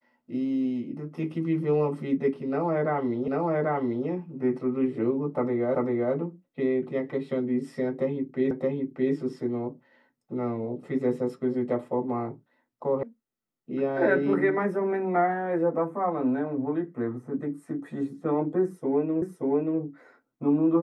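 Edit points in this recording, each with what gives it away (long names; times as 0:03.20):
0:03.28: the same again, the last 0.79 s
0:05.75: the same again, the last 0.39 s
0:08.51: the same again, the last 0.62 s
0:13.03: cut off before it has died away
0:19.22: the same again, the last 0.58 s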